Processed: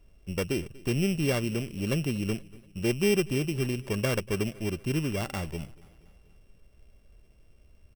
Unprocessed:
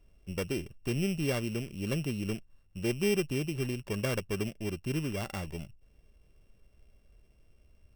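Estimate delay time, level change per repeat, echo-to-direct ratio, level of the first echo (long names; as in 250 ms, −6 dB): 239 ms, −5.5 dB, −20.5 dB, −22.0 dB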